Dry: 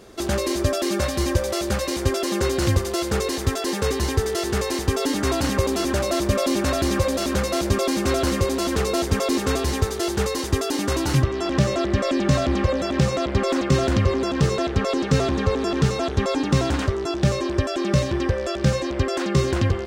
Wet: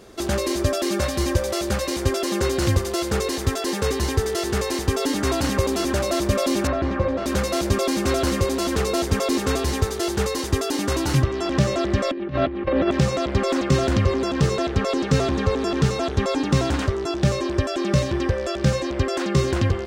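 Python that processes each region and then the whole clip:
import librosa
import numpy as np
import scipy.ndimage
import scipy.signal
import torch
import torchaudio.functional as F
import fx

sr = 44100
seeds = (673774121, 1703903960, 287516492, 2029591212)

y = fx.chain(x, sr, fx.lowpass(hz=1900.0, slope=12),
    fx.hum_notches(base_hz=50, count=8), at=(6.67, 7.26))
y = fx.chain(y, sr, fx.lowpass(hz=3200.0, slope=24),
    fx.peak_eq(hz=340.0, db=8.5, octaves=0.34),
    fx.over_compress(threshold_db=-22.0, ratio=-0.5), at=(12.11, 12.91))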